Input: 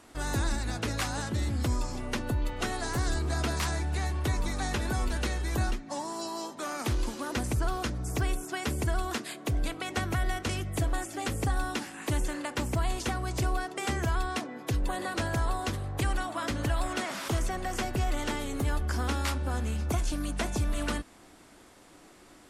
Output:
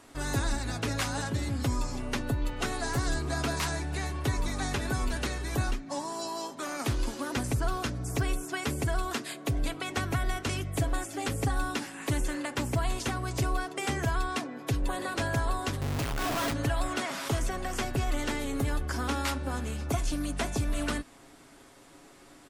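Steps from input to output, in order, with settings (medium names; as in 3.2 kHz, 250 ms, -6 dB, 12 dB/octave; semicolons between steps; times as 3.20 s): 15.81–16.53 s: Schmitt trigger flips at -41 dBFS; comb 7.3 ms, depth 40%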